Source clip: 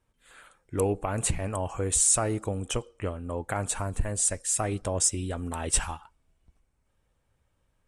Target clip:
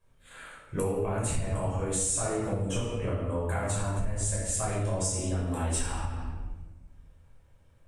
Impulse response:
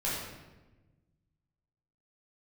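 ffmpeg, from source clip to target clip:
-filter_complex "[1:a]atrim=start_sample=2205[s0];[0:a][s0]afir=irnorm=-1:irlink=0,acompressor=threshold=0.0398:ratio=4"

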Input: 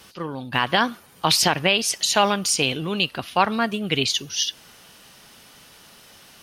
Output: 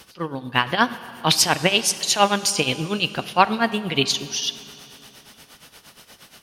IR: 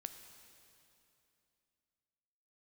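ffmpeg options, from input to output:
-filter_complex "[0:a]tremolo=f=8.5:d=0.8,asplit=2[s0][s1];[1:a]atrim=start_sample=2205[s2];[s1][s2]afir=irnorm=-1:irlink=0,volume=1.58[s3];[s0][s3]amix=inputs=2:normalize=0,volume=0.841"

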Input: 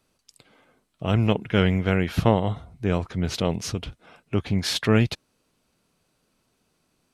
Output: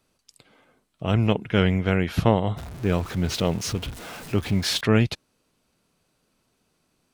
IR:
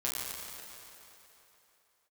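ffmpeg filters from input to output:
-filter_complex "[0:a]asettb=1/sr,asplit=3[s0][s1][s2];[s0]atrim=end=2.574[s3];[s1]atrim=start=2.57:end=4.81,asetpts=PTS-STARTPTS,afade=t=in:d=0.004:c=qsin,afade=t=out:st=2.236:d=0.004:c=qsin,aeval=exprs='val(0)+0.5*0.02*sgn(val(0))':c=same[s4];[s2]atrim=start=4.806[s5];[s3][s4]acrossfade=d=0.004:c1=hsin:c2=qsin[s6];[s6][s5]acrossfade=d=0.004:c1=qsin:c2=hsin"

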